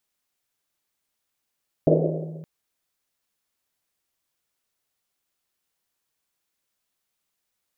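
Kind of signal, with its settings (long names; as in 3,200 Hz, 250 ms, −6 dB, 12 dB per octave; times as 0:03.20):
drum after Risset length 0.57 s, pitch 160 Hz, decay 2.05 s, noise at 470 Hz, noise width 330 Hz, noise 55%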